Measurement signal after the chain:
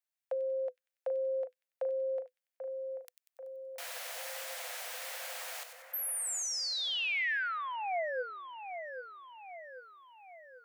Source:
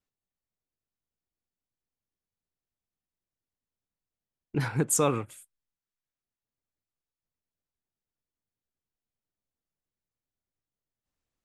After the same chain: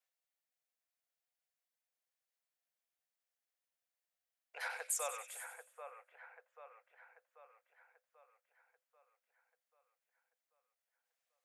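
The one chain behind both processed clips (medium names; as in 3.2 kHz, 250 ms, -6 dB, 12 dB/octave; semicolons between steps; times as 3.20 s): treble shelf 6.3 kHz +6 dB; compression, threshold -31 dBFS; rippled Chebyshev high-pass 490 Hz, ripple 6 dB; on a send: two-band feedback delay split 2.3 kHz, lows 788 ms, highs 95 ms, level -8.5 dB; on the sum: trim +2 dB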